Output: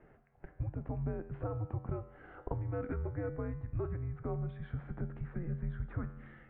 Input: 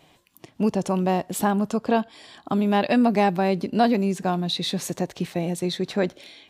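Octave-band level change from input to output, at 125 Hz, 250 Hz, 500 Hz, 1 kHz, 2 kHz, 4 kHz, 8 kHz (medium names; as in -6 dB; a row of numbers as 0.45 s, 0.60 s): -6.0 dB, -21.0 dB, -18.0 dB, -24.5 dB, -20.5 dB, under -40 dB, under -40 dB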